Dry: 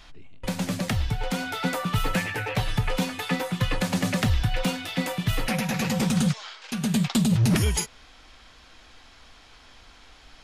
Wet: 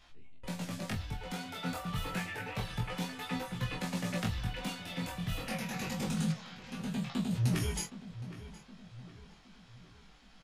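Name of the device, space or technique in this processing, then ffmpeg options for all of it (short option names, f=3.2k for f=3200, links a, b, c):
double-tracked vocal: -filter_complex "[0:a]asplit=2[a][b];[b]adelay=24,volume=-5.5dB[c];[a][c]amix=inputs=2:normalize=0,flanger=delay=15.5:depth=7:speed=0.28,asettb=1/sr,asplit=3[d][e][f];[d]atrim=end=6.324[g];[e]atrim=start=6.32:end=7.31,asetpts=PTS-STARTPTS,afade=t=in:d=0.004:c=qsin,afade=t=out:st=0.986:d=0.004:c=qsin,acrossover=split=3500[h][i];[i]acompressor=threshold=-44dB:ratio=4:attack=1:release=60[j];[h][j]amix=inputs=2:normalize=0[k];[f]atrim=start=7.306[l];[g][k]acrossfade=d=0.004:c1=hsin:c2=qsin[m];[m][l]acrossfade=d=0.004:c1=qsin:c2=hsin,asplit=2[n][o];[o]adelay=767,lowpass=f=2.5k:p=1,volume=-13.5dB,asplit=2[p][q];[q]adelay=767,lowpass=f=2.5k:p=1,volume=0.48,asplit=2[r][s];[s]adelay=767,lowpass=f=2.5k:p=1,volume=0.48,asplit=2[t][u];[u]adelay=767,lowpass=f=2.5k:p=1,volume=0.48,asplit=2[v][w];[w]adelay=767,lowpass=f=2.5k:p=1,volume=0.48[x];[n][p][r][t][v][x]amix=inputs=6:normalize=0,volume=-8.5dB"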